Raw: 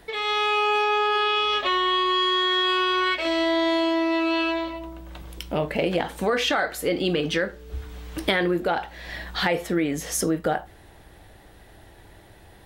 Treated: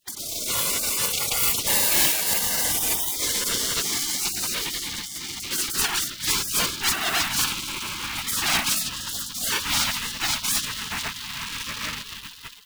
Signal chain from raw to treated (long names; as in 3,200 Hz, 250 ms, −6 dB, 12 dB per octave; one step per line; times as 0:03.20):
three sine waves on the formant tracks
low-pass filter 2,000 Hz 24 dB per octave
on a send: feedback delay with all-pass diffusion 1,243 ms, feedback 40%, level −16 dB
on the sum: automatic gain control gain up to 7.5 dB
in parallel at −3.5 dB: fuzz pedal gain 34 dB, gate −42 dBFS
on the sum: spring reverb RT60 1.2 s, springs 35 ms, chirp 45 ms, DRR 11 dB
formants moved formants +4 semitones
log-companded quantiser 6 bits
gate on every frequency bin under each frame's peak −25 dB weak
soft clipping −10.5 dBFS, distortion −20 dB
level +3 dB